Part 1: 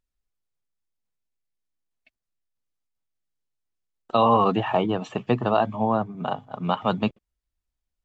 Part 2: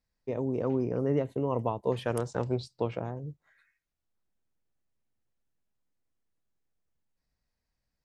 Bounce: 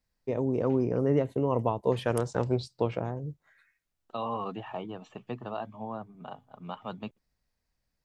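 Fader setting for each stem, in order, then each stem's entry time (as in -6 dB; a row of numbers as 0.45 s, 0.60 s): -15.0 dB, +2.5 dB; 0.00 s, 0.00 s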